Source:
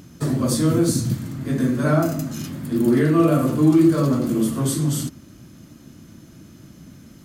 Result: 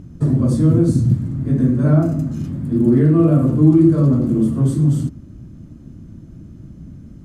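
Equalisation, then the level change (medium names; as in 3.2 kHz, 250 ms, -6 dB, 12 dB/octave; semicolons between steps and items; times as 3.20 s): tilt EQ -4.5 dB/octave; peaking EQ 8.6 kHz +7.5 dB 0.83 oct; -5.0 dB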